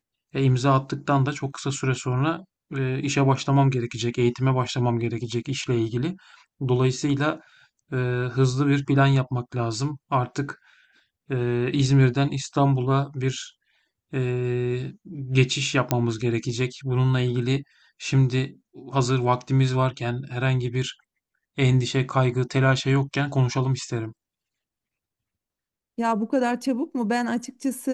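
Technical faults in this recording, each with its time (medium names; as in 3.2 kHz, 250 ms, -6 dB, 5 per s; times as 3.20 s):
15.91 s: pop -7 dBFS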